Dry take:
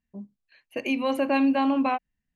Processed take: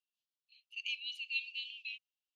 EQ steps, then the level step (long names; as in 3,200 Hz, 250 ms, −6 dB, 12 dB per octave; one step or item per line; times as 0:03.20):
Butterworth high-pass 2,700 Hz 72 dB per octave
high-frequency loss of the air 160 metres
+4.0 dB